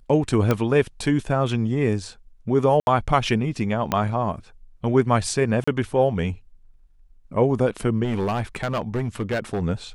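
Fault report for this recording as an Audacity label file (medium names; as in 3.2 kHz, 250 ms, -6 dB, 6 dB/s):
0.510000	0.510000	pop -8 dBFS
2.800000	2.870000	dropout 71 ms
3.920000	3.920000	pop -7 dBFS
5.640000	5.670000	dropout 35 ms
8.030000	9.630000	clipped -20 dBFS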